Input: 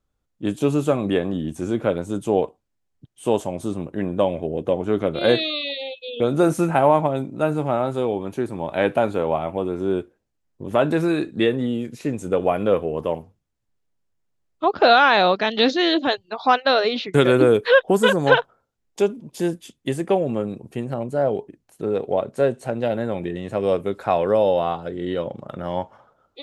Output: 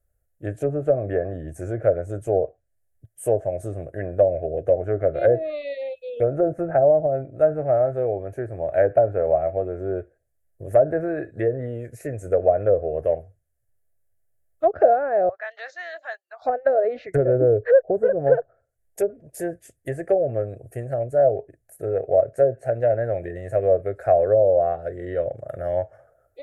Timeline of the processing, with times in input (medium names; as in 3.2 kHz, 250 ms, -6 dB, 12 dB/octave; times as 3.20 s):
6.63–9.96 s: treble shelf 3.4 kHz -8.5 dB
15.29–16.42 s: ladder high-pass 880 Hz, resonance 50%
whole clip: low-pass that closes with the level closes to 600 Hz, closed at -13.5 dBFS; FFT filter 110 Hz 0 dB, 210 Hz -22 dB, 660 Hz +3 dB, 960 Hz -26 dB, 1.7 kHz -2 dB, 3.4 kHz -27 dB, 11 kHz +7 dB; trim +4.5 dB